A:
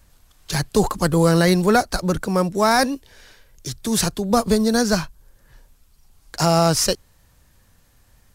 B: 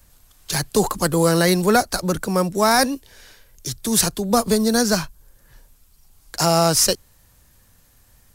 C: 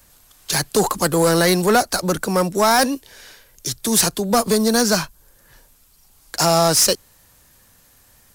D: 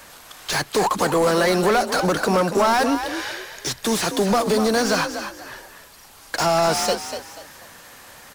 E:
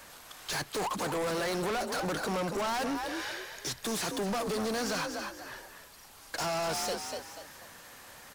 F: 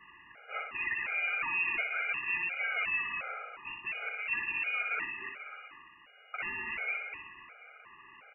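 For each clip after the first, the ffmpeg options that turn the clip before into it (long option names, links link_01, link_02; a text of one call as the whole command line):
ffmpeg -i in.wav -filter_complex "[0:a]highshelf=frequency=7600:gain=8.5,acrossover=split=180[link_01][link_02];[link_01]alimiter=level_in=2.5dB:limit=-24dB:level=0:latency=1,volume=-2.5dB[link_03];[link_03][link_02]amix=inputs=2:normalize=0" out.wav
ffmpeg -i in.wav -af "lowshelf=frequency=140:gain=-10,asoftclip=type=tanh:threshold=-13dB,volume=4.5dB" out.wav
ffmpeg -i in.wav -filter_complex "[0:a]acompressor=threshold=-23dB:ratio=6,asplit=2[link_01][link_02];[link_02]highpass=frequency=720:poles=1,volume=23dB,asoftclip=type=tanh:threshold=-10.5dB[link_03];[link_01][link_03]amix=inputs=2:normalize=0,lowpass=frequency=2000:poles=1,volume=-6dB,asplit=5[link_04][link_05][link_06][link_07][link_08];[link_05]adelay=243,afreqshift=47,volume=-9dB[link_09];[link_06]adelay=486,afreqshift=94,volume=-19.2dB[link_10];[link_07]adelay=729,afreqshift=141,volume=-29.3dB[link_11];[link_08]adelay=972,afreqshift=188,volume=-39.5dB[link_12];[link_04][link_09][link_10][link_11][link_12]amix=inputs=5:normalize=0,volume=1dB" out.wav
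ffmpeg -i in.wav -af "asoftclip=type=tanh:threshold=-23dB,volume=-6.5dB" out.wav
ffmpeg -i in.wav -filter_complex "[0:a]asplit=2[link_01][link_02];[link_02]aecho=0:1:61|122|183|244|305|366|427:0.562|0.298|0.158|0.0837|0.0444|0.0235|0.0125[link_03];[link_01][link_03]amix=inputs=2:normalize=0,lowpass=frequency=2500:width_type=q:width=0.5098,lowpass=frequency=2500:width_type=q:width=0.6013,lowpass=frequency=2500:width_type=q:width=0.9,lowpass=frequency=2500:width_type=q:width=2.563,afreqshift=-2900,afftfilt=real='re*gt(sin(2*PI*1.4*pts/sr)*(1-2*mod(floor(b*sr/1024/410),2)),0)':imag='im*gt(sin(2*PI*1.4*pts/sr)*(1-2*mod(floor(b*sr/1024/410),2)),0)':win_size=1024:overlap=0.75" out.wav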